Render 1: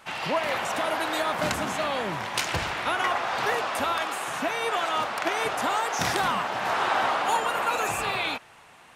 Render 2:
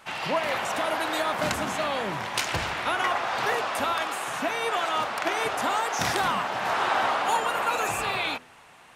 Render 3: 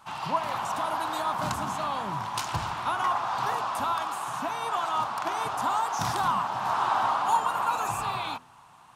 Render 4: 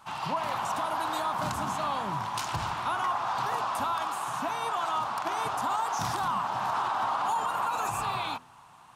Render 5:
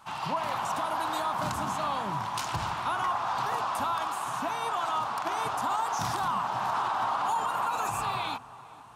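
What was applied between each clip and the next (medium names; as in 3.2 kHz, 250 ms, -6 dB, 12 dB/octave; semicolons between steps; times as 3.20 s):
de-hum 83.51 Hz, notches 6
ten-band graphic EQ 125 Hz +7 dB, 500 Hz -9 dB, 1 kHz +11 dB, 2 kHz -10 dB; trim -4 dB
peak limiter -20.5 dBFS, peak gain reduction 8.5 dB
filtered feedback delay 459 ms, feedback 68%, low-pass 1.6 kHz, level -19 dB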